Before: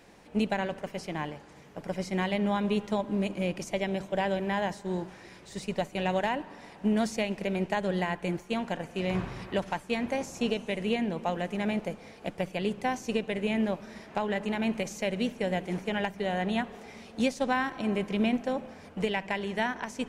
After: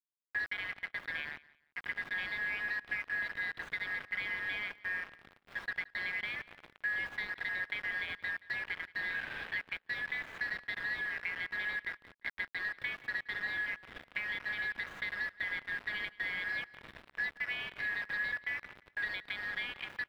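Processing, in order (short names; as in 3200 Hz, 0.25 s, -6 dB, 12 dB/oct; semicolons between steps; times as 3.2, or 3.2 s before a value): four-band scrambler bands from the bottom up 4123; HPF 870 Hz 12 dB/oct; high shelf 2200 Hz +7.5 dB; compressor 4:1, threshold -30 dBFS, peak gain reduction 10.5 dB; bit-crush 6-bit; air absorption 450 m; feedback echo 0.175 s, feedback 26%, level -21 dB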